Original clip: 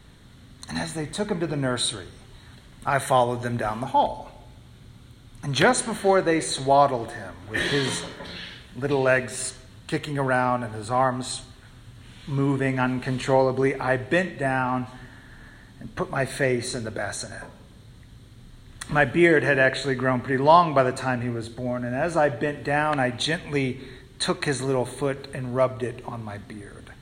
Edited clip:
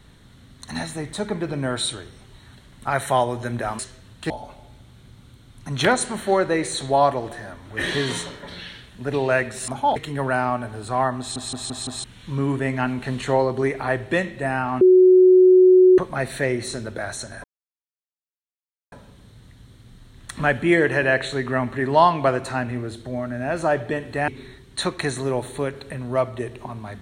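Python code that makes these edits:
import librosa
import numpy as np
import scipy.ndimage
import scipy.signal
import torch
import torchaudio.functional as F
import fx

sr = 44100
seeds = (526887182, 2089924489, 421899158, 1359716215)

y = fx.edit(x, sr, fx.swap(start_s=3.79, length_s=0.28, other_s=9.45, other_length_s=0.51),
    fx.stutter_over(start_s=11.19, slice_s=0.17, count=5),
    fx.bleep(start_s=14.81, length_s=1.17, hz=369.0, db=-8.5),
    fx.insert_silence(at_s=17.44, length_s=1.48),
    fx.cut(start_s=22.8, length_s=0.91), tone=tone)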